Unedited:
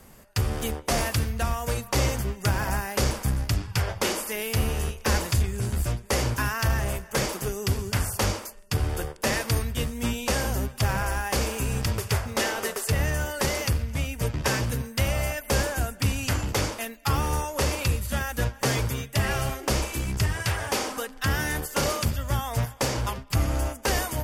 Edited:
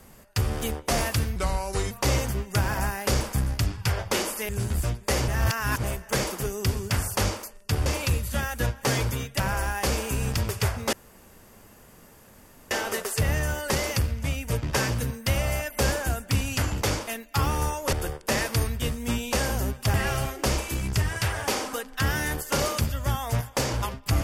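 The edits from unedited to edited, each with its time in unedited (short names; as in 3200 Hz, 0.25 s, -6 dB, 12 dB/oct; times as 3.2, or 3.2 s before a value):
1.36–1.81 speed 82%
4.39–5.51 cut
6.3–6.86 reverse
8.88–10.89 swap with 17.64–19.18
12.42 insert room tone 1.78 s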